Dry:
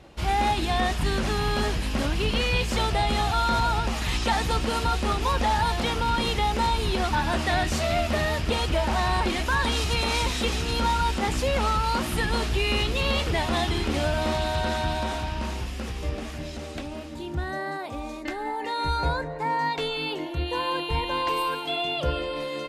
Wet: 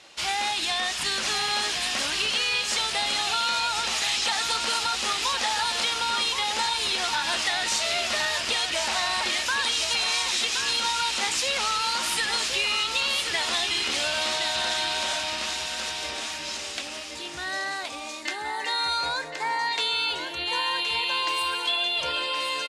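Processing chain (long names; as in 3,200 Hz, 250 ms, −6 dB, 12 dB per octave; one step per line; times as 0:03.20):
meter weighting curve ITU-R 468
downward compressor, threshold −23 dBFS, peak gain reduction 7 dB
single-tap delay 1,071 ms −7 dB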